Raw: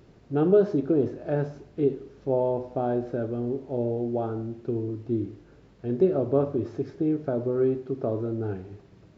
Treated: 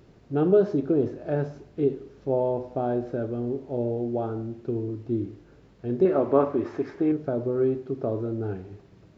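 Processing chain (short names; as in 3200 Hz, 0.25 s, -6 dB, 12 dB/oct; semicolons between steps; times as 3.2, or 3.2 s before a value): 6.05–7.12 graphic EQ 125/250/1000/2000 Hz -8/+3/+10/+9 dB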